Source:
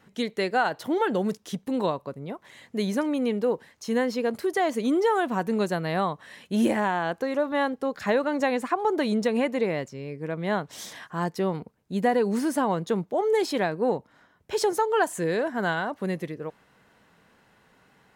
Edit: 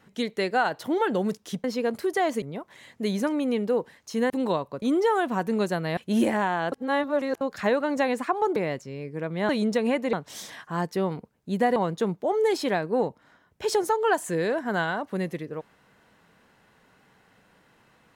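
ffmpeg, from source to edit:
-filter_complex "[0:a]asplit=12[a][b][c][d][e][f][g][h][i][j][k][l];[a]atrim=end=1.642[m];[b]atrim=start=4.038:end=4.822[n];[c]atrim=start=2.158:end=4.042[o];[d]atrim=start=1.638:end=2.162[p];[e]atrim=start=4.818:end=5.972[q];[f]atrim=start=6.398:end=7.152[r];[g]atrim=start=7.148:end=7.842,asetpts=PTS-STARTPTS,areverse[s];[h]atrim=start=7.838:end=8.992[t];[i]atrim=start=9.628:end=10.562[u];[j]atrim=start=8.988:end=9.632[v];[k]atrim=start=10.558:end=12.192[w];[l]atrim=start=12.648[x];[m][n]acrossfade=d=0.004:c1=hsin:c2=hsin[y];[y][o]acrossfade=d=0.004:c1=hsin:c2=hsin[z];[z][p]acrossfade=d=0.004:c1=hsin:c2=hsin[aa];[aa][q]acrossfade=d=0.004:c1=hsin:c2=hsin[ab];[ab][r]acrossfade=d=0.004:c1=hsin:c2=hsin[ac];[ac][s]acrossfade=d=0.004:c1=hsin:c2=hsin[ad];[ad][t]acrossfade=d=0.004:c1=hsin:c2=hsin[ae];[ae][u]acrossfade=d=0.004:c1=hsin:c2=hsin[af];[af][v]acrossfade=d=0.004:c1=hsin:c2=hsin[ag];[ag][w]acrossfade=d=0.004:c1=hsin:c2=hsin[ah];[ah][x]acrossfade=d=0.004:c1=hsin:c2=hsin"

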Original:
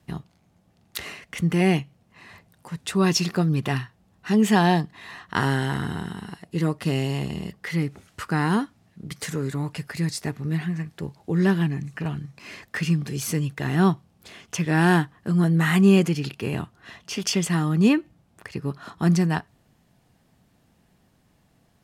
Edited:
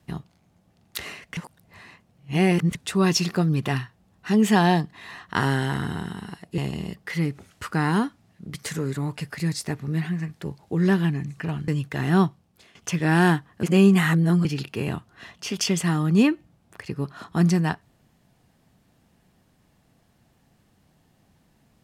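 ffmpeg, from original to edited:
-filter_complex "[0:a]asplit=8[a][b][c][d][e][f][g][h];[a]atrim=end=1.372[i];[b]atrim=start=1.368:end=2.752,asetpts=PTS-STARTPTS,areverse[j];[c]atrim=start=2.748:end=6.582[k];[d]atrim=start=7.148:end=12.252[l];[e]atrim=start=13.338:end=14.41,asetpts=PTS-STARTPTS,afade=t=out:st=0.552:d=0.52:silence=0.177828[m];[f]atrim=start=14.41:end=15.292,asetpts=PTS-STARTPTS,afade=t=in:d=0.004:c=hsin:silence=0.177828[n];[g]atrim=start=15.288:end=16.112,asetpts=PTS-STARTPTS,areverse[o];[h]atrim=start=16.108[p];[i][j]acrossfade=d=0.004:c1=hsin:c2=hsin[q];[q][k]acrossfade=d=0.004:c1=hsin:c2=hsin[r];[r][l]acrossfade=d=0.004:c1=hsin:c2=hsin[s];[m][n]concat=n=2:v=0:a=1[t];[s][t]acrossfade=d=0.004:c1=hsin:c2=hsin[u];[u][o]acrossfade=d=0.004:c1=hsin:c2=hsin[v];[v][p]acrossfade=d=0.004:c1=hsin:c2=hsin"

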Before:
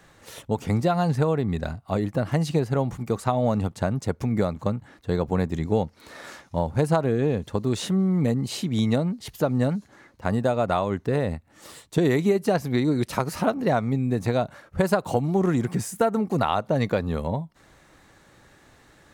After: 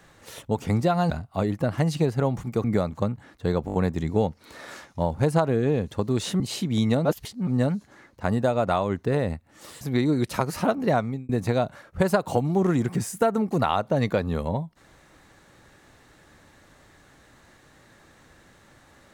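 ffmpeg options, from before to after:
-filter_complex "[0:a]asplit=12[a][b][c][d][e][f][g][h][i][j][k][l];[a]atrim=end=1.102[m];[b]atrim=start=1.638:end=3.182[n];[c]atrim=start=4.278:end=5.322[o];[d]atrim=start=5.298:end=5.322[p];[e]atrim=start=5.298:end=5.322[q];[f]atrim=start=5.298:end=5.322[r];[g]atrim=start=5.298:end=7.962[s];[h]atrim=start=8.408:end=9.062[t];[i]atrim=start=9.058:end=9.482,asetpts=PTS-STARTPTS,areverse[u];[j]atrim=start=9.478:end=11.822[v];[k]atrim=start=12.598:end=14.08,asetpts=PTS-STARTPTS,afade=t=out:st=1.172:d=0.31[w];[l]atrim=start=14.08,asetpts=PTS-STARTPTS,afade=t=in:d=0.004:c=hsin[x];[m][n]acrossfade=d=0.004:c1=hsin:c2=hsin[y];[y][o]acrossfade=d=0.004:c1=hsin:c2=hsin[z];[z][p]acrossfade=d=0.004:c1=hsin:c2=hsin[aa];[aa][q]acrossfade=d=0.004:c1=hsin:c2=hsin[ab];[ab][r]acrossfade=d=0.004:c1=hsin:c2=hsin[ac];[ac][s]acrossfade=d=0.004:c1=hsin:c2=hsin[ad];[ad][t]acrossfade=d=0.004:c1=hsin:c2=hsin[ae];[ae][u]acrossfade=d=0.004:c1=hsin:c2=hsin[af];[af][v]acrossfade=d=0.004:c1=hsin:c2=hsin[ag];[w][x]concat=n=2:v=0:a=1[ah];[ag][ah]acrossfade=d=0.004:c1=hsin:c2=hsin"

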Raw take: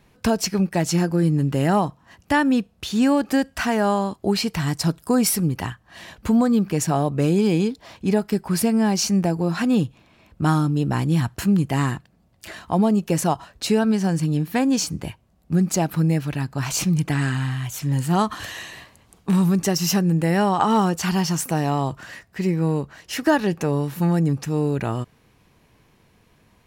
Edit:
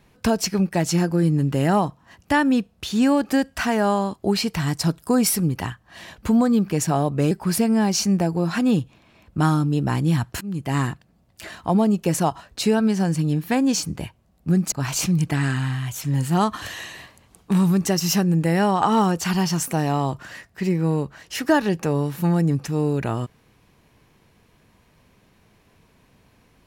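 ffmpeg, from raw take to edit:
-filter_complex "[0:a]asplit=4[a][b][c][d];[a]atrim=end=7.312[e];[b]atrim=start=8.348:end=11.45,asetpts=PTS-STARTPTS,afade=t=out:st=3.098:d=0.004:c=hsin:silence=0.0668344[f];[c]atrim=start=11.45:end=15.762,asetpts=PTS-STARTPTS,afade=t=in:d=0.39:silence=0.0668344[g];[d]atrim=start=16.498[h];[f][g]concat=n=2:v=0:a=1[i];[e][i]acrossfade=d=0.004:c1=hsin:c2=hsin[j];[j][h]acrossfade=d=0.004:c1=hsin:c2=hsin"

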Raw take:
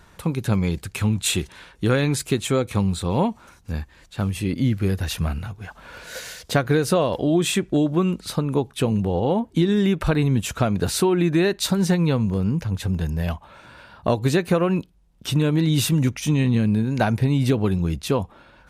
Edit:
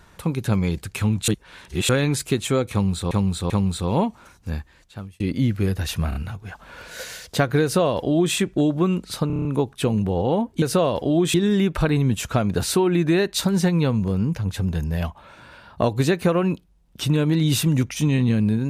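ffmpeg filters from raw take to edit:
-filter_complex "[0:a]asplit=16[a][b][c][d][e][f][g][h][i][j][k][l][m][n][o][p];[a]atrim=end=1.282[q];[b]atrim=start=1.278:end=1.892,asetpts=PTS-STARTPTS,areverse[r];[c]atrim=start=1.888:end=3.112[s];[d]atrim=start=2.718:end=3.112[t];[e]atrim=start=2.718:end=4.42,asetpts=PTS-STARTPTS,afade=t=out:st=1.052:d=0.65[u];[f]atrim=start=4.42:end=5.342,asetpts=PTS-STARTPTS,afade=t=in:d=0.004:c=hsin[v];[g]atrim=start=5.308:end=5.342[w];[h]atrim=start=5.308:end=8.462[x];[i]atrim=start=8.428:end=8.462[y];[j]atrim=start=8.428:end=8.462[z];[k]atrim=start=8.428:end=8.462[aa];[l]atrim=start=8.428:end=8.462[ab];[m]atrim=start=8.428:end=8.462[ac];[n]atrim=start=8.428:end=9.602[ad];[o]atrim=start=6.788:end=7.512[ae];[p]atrim=start=9.598[af];[q][r]acrossfade=d=0.004:c1=hsin:c2=hsin[ag];[ag][s]acrossfade=d=0.004:c1=hsin:c2=hsin[ah];[ah][t]acrossfade=d=0.004:c1=hsin:c2=hsin[ai];[u][v]concat=n=2:v=0:a=1[aj];[ai][aj]acrossfade=d=0.004:c1=hsin:c2=hsin[ak];[ak][w]acrossfade=d=0.004:c1=hsin:c2=hsin[al];[al][x]acrossfade=d=0.004:c1=hsin:c2=hsin[am];[am][y]acrossfade=d=0.004:c1=hsin:c2=hsin[an];[an][z]acrossfade=d=0.004:c1=hsin:c2=hsin[ao];[ao][aa]acrossfade=d=0.004:c1=hsin:c2=hsin[ap];[ap][ab]acrossfade=d=0.004:c1=hsin:c2=hsin[aq];[aq][ac]acrossfade=d=0.004:c1=hsin:c2=hsin[ar];[ar][ad]acrossfade=d=0.004:c1=hsin:c2=hsin[as];[as][ae]acrossfade=d=0.004:c1=hsin:c2=hsin[at];[at][af]acrossfade=d=0.004:c1=hsin:c2=hsin"

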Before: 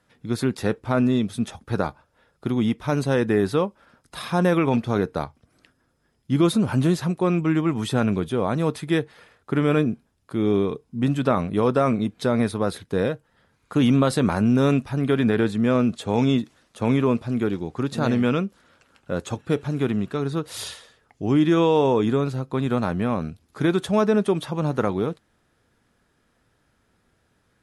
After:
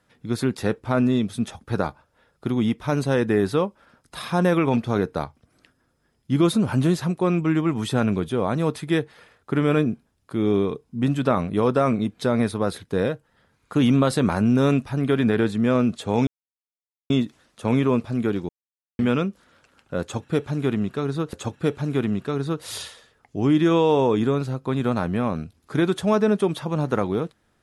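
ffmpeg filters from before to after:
-filter_complex "[0:a]asplit=5[a][b][c][d][e];[a]atrim=end=16.27,asetpts=PTS-STARTPTS,afade=t=out:st=16.266:d=0.004:c=hsin,apad=pad_dur=0.83[f];[b]atrim=start=16.27:end=17.66,asetpts=PTS-STARTPTS,afade=t=in:d=0.004:c=hsin,afade=t=out:st=1.386:d=0.004:c=hsin[g];[c]atrim=start=17.66:end=18.16,asetpts=PTS-STARTPTS,volume=0[h];[d]atrim=start=18.16:end=20.502,asetpts=PTS-STARTPTS,afade=t=in:d=0.004:c=hsin[i];[e]atrim=start=19.188[j];[f][g][h][i]concat=n=4:v=0:a=1[k];[k][j]acrossfade=d=0.004:c1=hsin:c2=hsin"

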